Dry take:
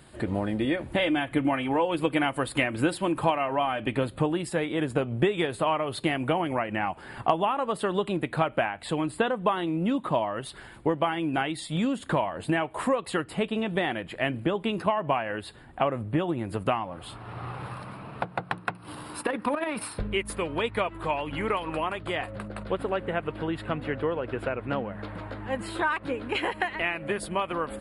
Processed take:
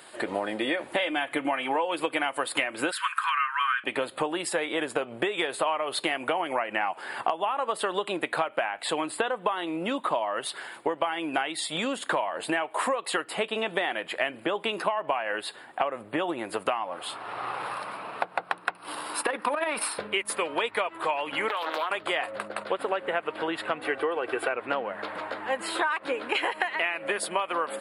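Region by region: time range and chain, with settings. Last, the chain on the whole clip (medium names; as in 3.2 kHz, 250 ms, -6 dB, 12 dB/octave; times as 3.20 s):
2.91–3.84 s: elliptic high-pass 1.1 kHz + peaking EQ 1.5 kHz +13.5 dB 0.75 oct + tape noise reduction on one side only decoder only
21.49–21.91 s: high-pass 320 Hz + compression 5:1, threshold -30 dBFS + loudspeaker Doppler distortion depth 0.37 ms
23.81–24.54 s: peaking EQ 9.5 kHz +10.5 dB 0.4 oct + comb 2.6 ms, depth 50%
whole clip: high-pass 530 Hz 12 dB/octave; compression, threshold -31 dBFS; trim +7.5 dB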